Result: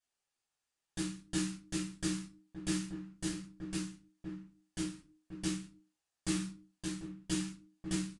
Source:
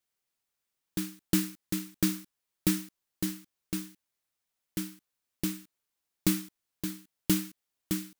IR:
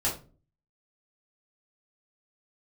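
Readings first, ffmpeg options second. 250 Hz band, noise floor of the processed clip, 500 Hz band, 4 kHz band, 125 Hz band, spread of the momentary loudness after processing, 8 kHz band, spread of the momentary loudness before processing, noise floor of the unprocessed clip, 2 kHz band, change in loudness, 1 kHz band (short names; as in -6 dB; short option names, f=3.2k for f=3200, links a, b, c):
-5.0 dB, under -85 dBFS, -4.0 dB, -3.5 dB, -4.5 dB, 11 LU, -4.0 dB, 13 LU, -85 dBFS, -3.0 dB, -6.5 dB, -2.5 dB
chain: -filter_complex "[0:a]lowshelf=f=410:g=-7,alimiter=limit=-19dB:level=0:latency=1:release=128,asplit=2[a][b];[b]adelay=1574,volume=-8dB,highshelf=f=4k:g=-35.4[c];[a][c]amix=inputs=2:normalize=0[d];[1:a]atrim=start_sample=2205,afade=t=out:st=0.42:d=0.01,atrim=end_sample=18963[e];[d][e]afir=irnorm=-1:irlink=0,aresample=22050,aresample=44100,volume=-8dB"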